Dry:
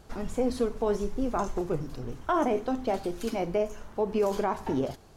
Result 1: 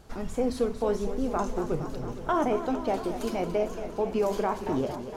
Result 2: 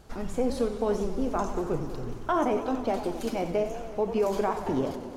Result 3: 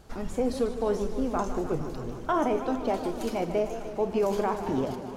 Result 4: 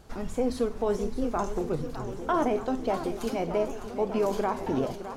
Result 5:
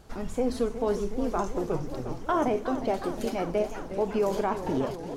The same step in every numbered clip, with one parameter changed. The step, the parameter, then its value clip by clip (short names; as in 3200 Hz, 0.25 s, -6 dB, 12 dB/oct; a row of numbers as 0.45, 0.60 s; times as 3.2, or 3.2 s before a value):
warbling echo, time: 230, 93, 151, 610, 363 ms